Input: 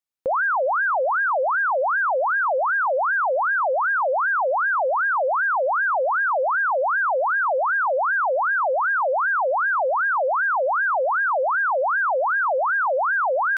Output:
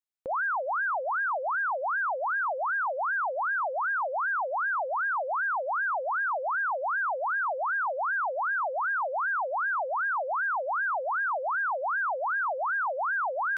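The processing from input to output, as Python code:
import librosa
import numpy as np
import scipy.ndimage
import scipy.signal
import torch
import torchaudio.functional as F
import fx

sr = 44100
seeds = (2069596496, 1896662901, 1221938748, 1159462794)

y = fx.peak_eq(x, sr, hz=520.0, db=-6.0, octaves=0.37)
y = y * 10.0 ** (-7.0 / 20.0)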